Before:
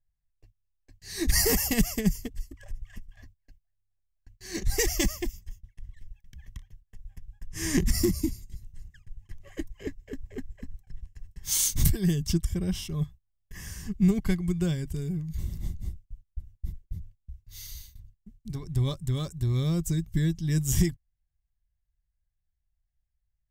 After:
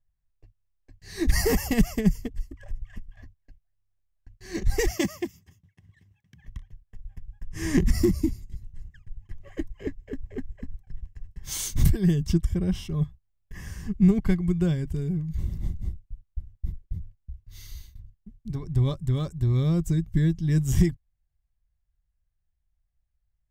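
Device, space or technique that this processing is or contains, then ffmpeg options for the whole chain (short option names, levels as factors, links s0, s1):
through cloth: -filter_complex "[0:a]asettb=1/sr,asplit=3[s0][s1][s2];[s0]atrim=end=4.914[s3];[s1]atrim=start=4.91:end=6.45,asetpts=PTS-STARTPTS,afade=t=in:d=0.004:c=qsin,afade=t=out:st=1.536:d=0.004:c=qsin,highpass=f=110:w=0.5412,highpass=f=110:w=1.3066[s4];[s2]atrim=start=6.446[s5];[s3][s4]acrossfade=d=0.004:c1=hsin:c2=qsin[s6];[s6][s5]acrossfade=d=0.004:c1=qsin:c2=hsin,highshelf=f=3200:g=-12,volume=1.5"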